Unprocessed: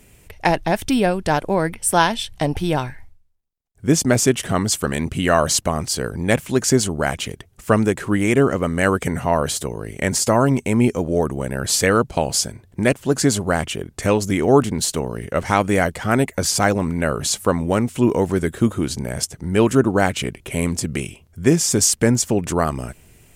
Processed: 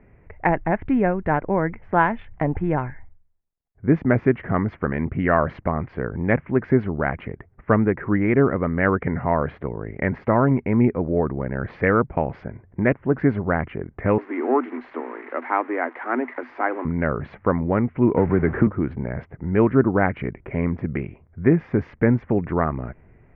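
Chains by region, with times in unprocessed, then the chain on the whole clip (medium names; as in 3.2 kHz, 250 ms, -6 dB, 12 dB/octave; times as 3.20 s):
14.18–16.85 s: zero-crossing glitches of -11 dBFS + rippled Chebyshev high-pass 240 Hz, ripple 6 dB
18.17–18.67 s: jump at every zero crossing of -25 dBFS + brick-wall FIR low-pass 5.9 kHz + three bands compressed up and down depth 100%
whole clip: local Wiener filter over 9 samples; elliptic low-pass 2.1 kHz, stop band 80 dB; dynamic bell 640 Hz, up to -3 dB, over -31 dBFS, Q 1.2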